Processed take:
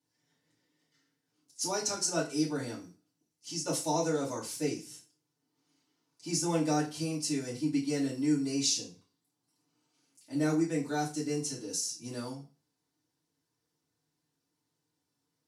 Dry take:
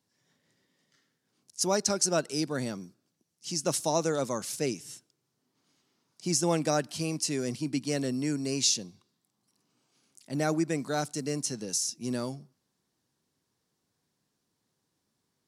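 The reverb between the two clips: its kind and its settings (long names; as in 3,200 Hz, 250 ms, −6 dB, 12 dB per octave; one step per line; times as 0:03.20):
feedback delay network reverb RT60 0.34 s, low-frequency decay 0.9×, high-frequency decay 0.95×, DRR −7 dB
level −11.5 dB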